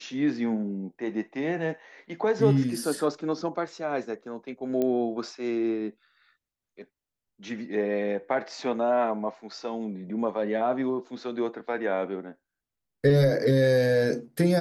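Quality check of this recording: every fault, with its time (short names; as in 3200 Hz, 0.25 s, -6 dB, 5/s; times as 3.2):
4.82 pop -16 dBFS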